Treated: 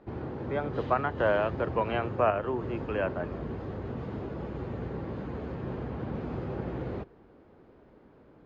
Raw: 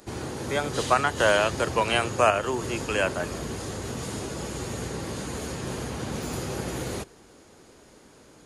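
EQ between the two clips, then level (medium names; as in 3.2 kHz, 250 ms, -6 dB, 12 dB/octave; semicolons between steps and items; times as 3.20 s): low-pass 1.1 kHz 6 dB/octave; distance through air 300 m; -1.5 dB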